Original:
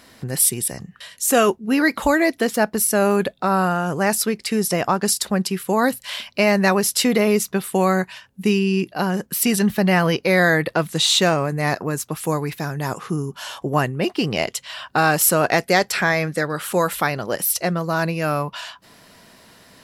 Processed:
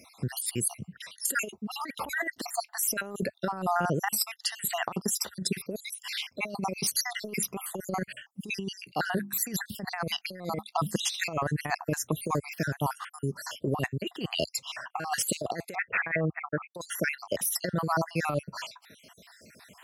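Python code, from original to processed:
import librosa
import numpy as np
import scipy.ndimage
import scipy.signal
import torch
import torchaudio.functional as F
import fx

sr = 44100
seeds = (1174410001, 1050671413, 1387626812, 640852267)

y = fx.spec_dropout(x, sr, seeds[0], share_pct=60)
y = fx.hum_notches(y, sr, base_hz=50, count=7, at=(9.02, 9.46))
y = scipy.signal.sosfilt(scipy.signal.butter(4, 67.0, 'highpass', fs=sr, output='sos'), y)
y = fx.peak_eq(y, sr, hz=210.0, db=10.5, octaves=0.23, at=(10.1, 10.96), fade=0.02)
y = fx.cheby1_lowpass(y, sr, hz=2600.0, order=10, at=(15.75, 16.75))
y = fx.over_compress(y, sr, threshold_db=-24.0, ratio=-0.5)
y = F.gain(torch.from_numpy(y), -4.5).numpy()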